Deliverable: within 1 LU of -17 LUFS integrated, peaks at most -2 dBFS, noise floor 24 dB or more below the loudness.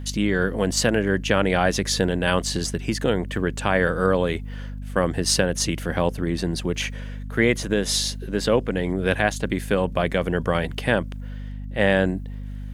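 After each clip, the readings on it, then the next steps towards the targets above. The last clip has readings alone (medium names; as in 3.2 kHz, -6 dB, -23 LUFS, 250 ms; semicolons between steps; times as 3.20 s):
tick rate 19 per s; hum 50 Hz; highest harmonic 250 Hz; hum level -30 dBFS; loudness -23.0 LUFS; peak level -5.0 dBFS; loudness target -17.0 LUFS
-> de-click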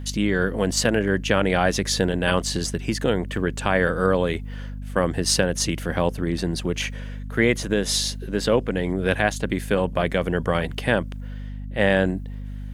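tick rate 0.079 per s; hum 50 Hz; highest harmonic 250 Hz; hum level -30 dBFS
-> hum notches 50/100/150/200/250 Hz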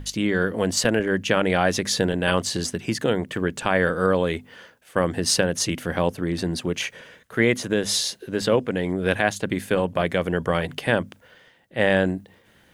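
hum not found; loudness -23.5 LUFS; peak level -5.0 dBFS; loudness target -17.0 LUFS
-> trim +6.5 dB; peak limiter -2 dBFS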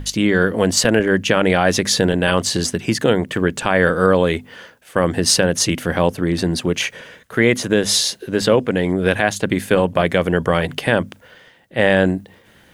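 loudness -17.5 LUFS; peak level -2.0 dBFS; noise floor -50 dBFS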